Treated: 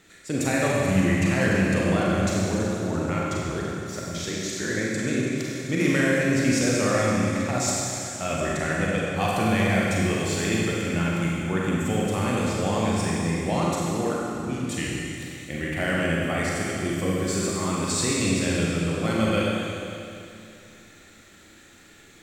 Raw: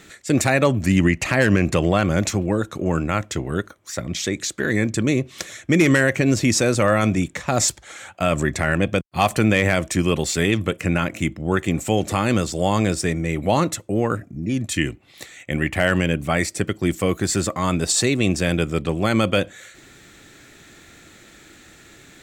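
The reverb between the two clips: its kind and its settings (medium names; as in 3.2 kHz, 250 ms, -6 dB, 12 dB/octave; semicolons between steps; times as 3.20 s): Schroeder reverb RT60 2.7 s, combs from 32 ms, DRR -5 dB; trim -10 dB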